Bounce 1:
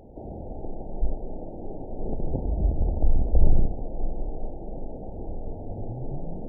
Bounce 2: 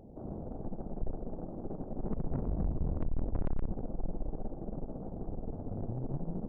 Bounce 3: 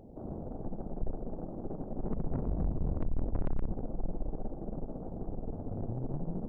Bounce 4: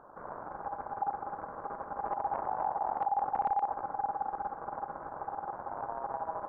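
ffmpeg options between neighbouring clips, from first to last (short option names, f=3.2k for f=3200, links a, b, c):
-af "equalizer=f=180:t=o:w=1.5:g=8.5,aeval=exprs='(tanh(17.8*val(0)+0.75)-tanh(0.75))/17.8':c=same,volume=-3.5dB"
-af "bandreject=f=67.06:t=h:w=4,bandreject=f=134.12:t=h:w=4,bandreject=f=201.18:t=h:w=4,volume=1dB"
-af "aeval=exprs='val(0)*sin(2*PI*810*n/s)':c=same"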